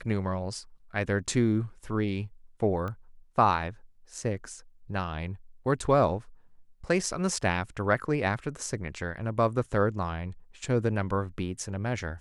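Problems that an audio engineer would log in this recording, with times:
2.88 pop -24 dBFS

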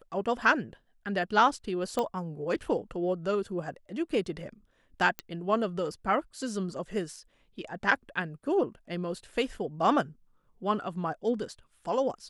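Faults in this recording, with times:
1.99 pop -16 dBFS
5.19 pop -17 dBFS

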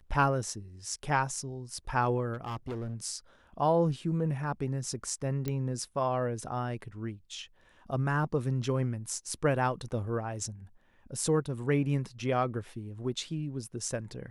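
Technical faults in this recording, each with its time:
2.33–2.95 clipped -32.5 dBFS
5.48 pop -19 dBFS

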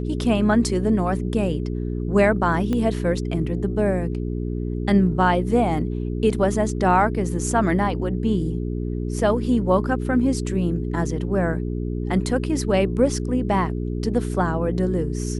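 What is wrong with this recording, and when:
hum 60 Hz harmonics 7 -26 dBFS
2.73 pop -14 dBFS

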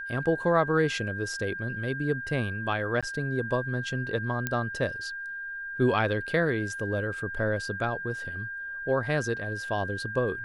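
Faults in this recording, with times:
tone 1600 Hz -34 dBFS
3.01–3.03 gap 16 ms
4.47 pop -13 dBFS

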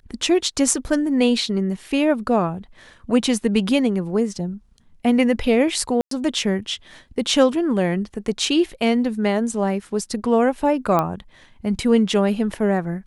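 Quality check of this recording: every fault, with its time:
6.01–6.11 gap 0.103 s
10.99 pop -8 dBFS

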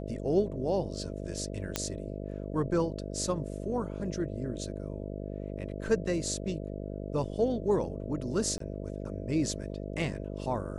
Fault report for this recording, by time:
buzz 50 Hz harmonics 13 -38 dBFS
1.76 pop -12 dBFS
8.58–8.6 gap 23 ms

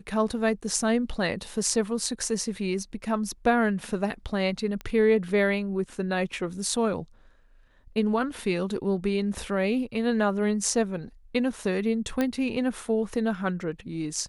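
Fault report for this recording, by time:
4.81 pop -22 dBFS
12.21 pop -13 dBFS

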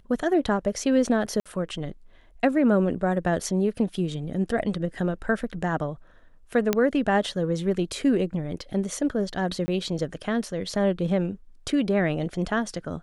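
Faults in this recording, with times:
1.4–1.46 gap 56 ms
6.73 pop -7 dBFS
9.66–9.68 gap 20 ms

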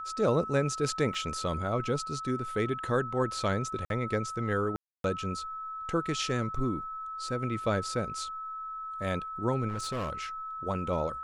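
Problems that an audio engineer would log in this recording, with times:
tone 1300 Hz -36 dBFS
1.14 gap 3.3 ms
3.85–3.9 gap 52 ms
4.76–5.04 gap 0.282 s
9.68–10.13 clipped -29.5 dBFS

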